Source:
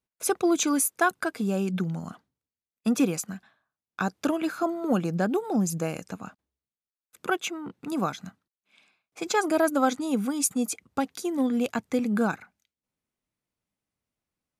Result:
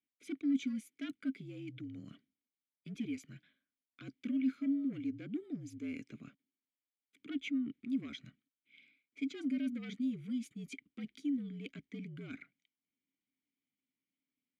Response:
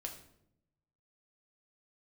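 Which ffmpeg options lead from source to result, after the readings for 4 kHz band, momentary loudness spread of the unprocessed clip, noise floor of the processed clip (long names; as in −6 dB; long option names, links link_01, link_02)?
−14.0 dB, 14 LU, below −85 dBFS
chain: -filter_complex "[0:a]aeval=exprs='0.316*(cos(1*acos(clip(val(0)/0.316,-1,1)))-cos(1*PI/2))+0.0891*(cos(5*acos(clip(val(0)/0.316,-1,1)))-cos(5*PI/2))':channel_layout=same,areverse,acompressor=threshold=-29dB:ratio=4,areverse,afreqshift=-57,asplit=3[link_01][link_02][link_03];[link_01]bandpass=frequency=270:width_type=q:width=8,volume=0dB[link_04];[link_02]bandpass=frequency=2290:width_type=q:width=8,volume=-6dB[link_05];[link_03]bandpass=frequency=3010:width_type=q:width=8,volume=-9dB[link_06];[link_04][link_05][link_06]amix=inputs=3:normalize=0"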